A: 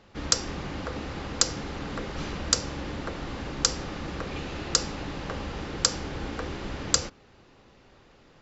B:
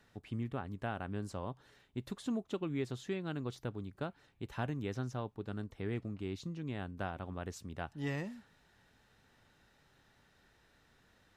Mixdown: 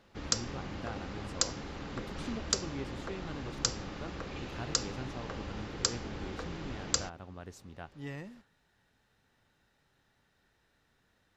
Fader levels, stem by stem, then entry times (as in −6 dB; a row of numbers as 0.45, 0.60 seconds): −7.0, −4.5 decibels; 0.00, 0.00 seconds